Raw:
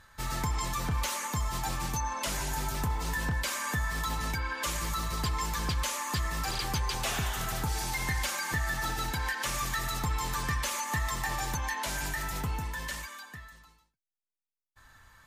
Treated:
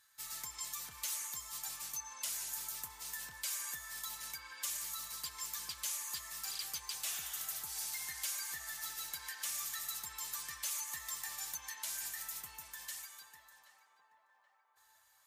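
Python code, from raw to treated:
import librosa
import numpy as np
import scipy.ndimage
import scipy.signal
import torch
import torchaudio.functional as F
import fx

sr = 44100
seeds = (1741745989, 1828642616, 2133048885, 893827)

y = scipy.signal.sosfilt(scipy.signal.butter(2, 46.0, 'highpass', fs=sr, output='sos'), x)
y = F.preemphasis(torch.from_numpy(y), 0.97).numpy()
y = fx.echo_banded(y, sr, ms=777, feedback_pct=67, hz=760.0, wet_db=-9.5)
y = y * librosa.db_to_amplitude(-2.5)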